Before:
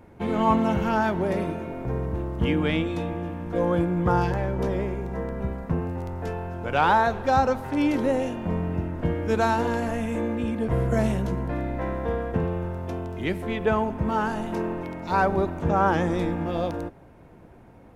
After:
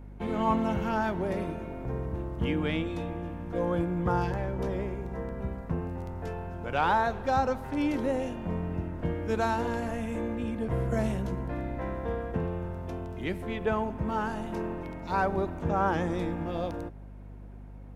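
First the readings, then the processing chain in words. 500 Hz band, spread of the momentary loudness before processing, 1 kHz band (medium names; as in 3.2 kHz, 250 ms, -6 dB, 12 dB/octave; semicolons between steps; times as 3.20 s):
-5.5 dB, 9 LU, -5.5 dB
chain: hum 50 Hz, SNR 14 dB; trim -5.5 dB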